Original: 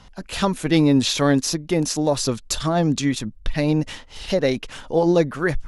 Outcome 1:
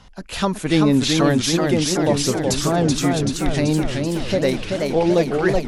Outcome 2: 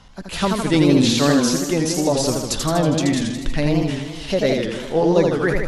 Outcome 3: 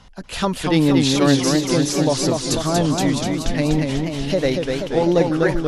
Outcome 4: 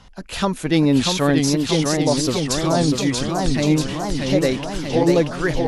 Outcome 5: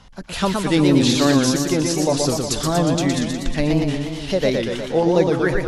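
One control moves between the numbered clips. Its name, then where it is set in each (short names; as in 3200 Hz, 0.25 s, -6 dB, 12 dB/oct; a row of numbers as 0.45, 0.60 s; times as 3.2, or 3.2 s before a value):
warbling echo, time: 377, 81, 243, 640, 120 ms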